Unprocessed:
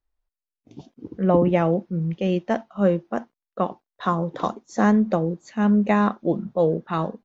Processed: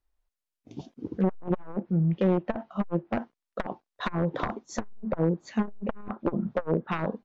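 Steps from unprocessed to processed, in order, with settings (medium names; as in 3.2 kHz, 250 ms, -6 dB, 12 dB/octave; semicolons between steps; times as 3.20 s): one-sided wavefolder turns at -18 dBFS; low-pass that closes with the level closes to 1.5 kHz, closed at -21.5 dBFS; transformer saturation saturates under 290 Hz; trim +1.5 dB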